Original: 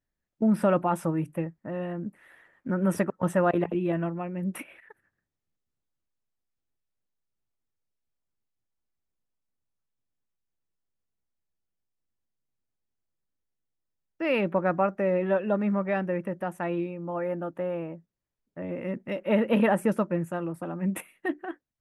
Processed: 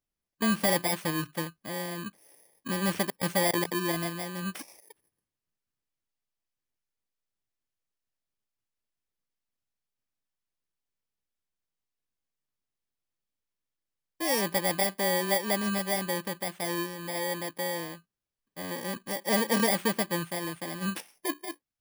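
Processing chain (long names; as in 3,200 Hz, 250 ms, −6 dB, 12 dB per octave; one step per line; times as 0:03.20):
samples in bit-reversed order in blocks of 32 samples
mid-hump overdrive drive 5 dB, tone 5,900 Hz, clips at −11.5 dBFS
0:20.14–0:20.59: steady tone 9,200 Hz −56 dBFS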